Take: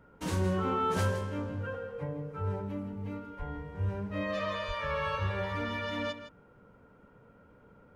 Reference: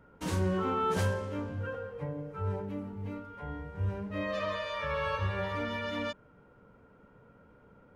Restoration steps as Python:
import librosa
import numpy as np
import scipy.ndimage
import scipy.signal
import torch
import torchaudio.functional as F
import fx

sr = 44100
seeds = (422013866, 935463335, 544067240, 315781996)

y = fx.highpass(x, sr, hz=140.0, slope=24, at=(3.38, 3.5), fade=0.02)
y = fx.highpass(y, sr, hz=140.0, slope=24, at=(4.67, 4.79), fade=0.02)
y = fx.fix_echo_inverse(y, sr, delay_ms=162, level_db=-11.5)